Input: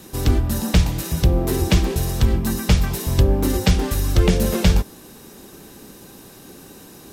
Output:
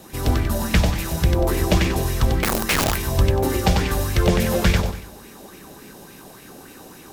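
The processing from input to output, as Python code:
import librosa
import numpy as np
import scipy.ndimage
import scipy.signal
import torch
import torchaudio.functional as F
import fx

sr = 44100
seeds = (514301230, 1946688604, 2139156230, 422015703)

y = fx.echo_feedback(x, sr, ms=94, feedback_pct=37, wet_db=-3.5)
y = fx.overflow_wrap(y, sr, gain_db=13.0, at=(2.41, 2.96))
y = fx.bell_lfo(y, sr, hz=3.5, low_hz=620.0, high_hz=2400.0, db=11)
y = y * librosa.db_to_amplitude(-3.0)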